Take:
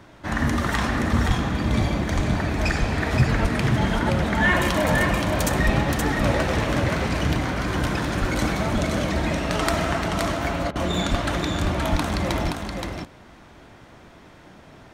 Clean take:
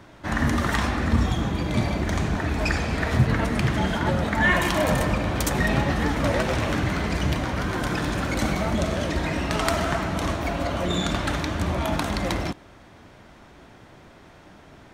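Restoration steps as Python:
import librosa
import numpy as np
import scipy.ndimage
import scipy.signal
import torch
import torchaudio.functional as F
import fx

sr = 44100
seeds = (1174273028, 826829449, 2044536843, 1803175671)

y = fx.fix_deplosive(x, sr, at_s=(1.27, 2.15, 2.79, 3.41, 5.65, 8.2, 11.1, 11.91))
y = fx.fix_interpolate(y, sr, at_s=(10.71,), length_ms=44.0)
y = fx.fix_echo_inverse(y, sr, delay_ms=523, level_db=-4.5)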